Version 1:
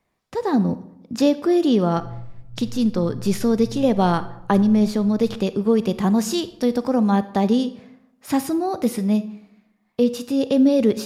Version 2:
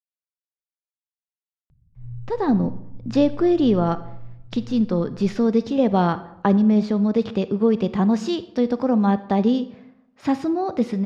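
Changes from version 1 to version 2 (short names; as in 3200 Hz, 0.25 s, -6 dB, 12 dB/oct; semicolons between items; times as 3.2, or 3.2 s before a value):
speech: entry +1.95 s; master: add air absorption 160 m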